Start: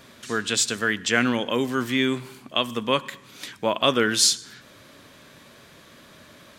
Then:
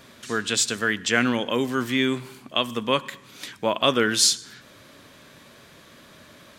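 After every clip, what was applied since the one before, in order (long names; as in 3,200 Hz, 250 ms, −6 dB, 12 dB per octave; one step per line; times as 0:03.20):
no processing that can be heard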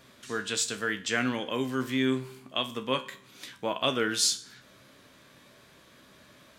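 tuned comb filter 65 Hz, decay 0.29 s, harmonics all, mix 70%
level −1.5 dB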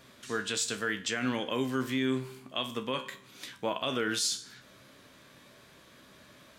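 brickwall limiter −20 dBFS, peak gain reduction 7.5 dB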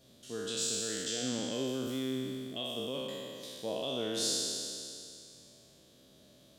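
peak hold with a decay on every bin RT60 2.61 s
flat-topped bell 1,500 Hz −13 dB
level −6.5 dB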